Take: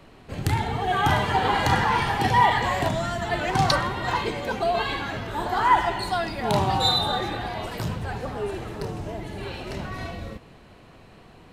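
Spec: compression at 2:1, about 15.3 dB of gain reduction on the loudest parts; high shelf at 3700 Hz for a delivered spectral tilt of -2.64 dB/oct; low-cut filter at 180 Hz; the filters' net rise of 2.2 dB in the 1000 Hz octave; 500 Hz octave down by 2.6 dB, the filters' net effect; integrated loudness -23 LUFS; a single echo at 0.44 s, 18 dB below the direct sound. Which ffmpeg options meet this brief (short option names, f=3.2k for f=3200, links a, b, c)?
-af "highpass=180,equalizer=f=500:t=o:g=-5.5,equalizer=f=1k:t=o:g=5,highshelf=f=3.7k:g=-9,acompressor=threshold=-40dB:ratio=2,aecho=1:1:440:0.126,volume=12.5dB"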